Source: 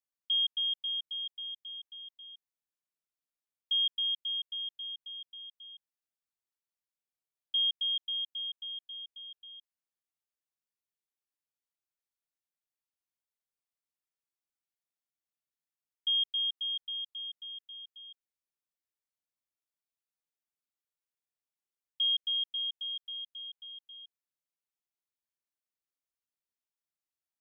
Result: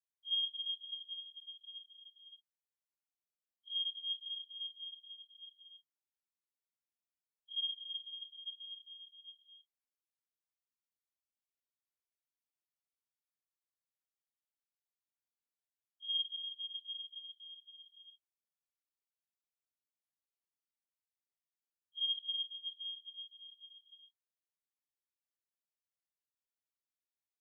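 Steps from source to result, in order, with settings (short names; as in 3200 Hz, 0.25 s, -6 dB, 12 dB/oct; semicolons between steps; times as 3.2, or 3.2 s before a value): phase scrambler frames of 0.1 s; gain -8.5 dB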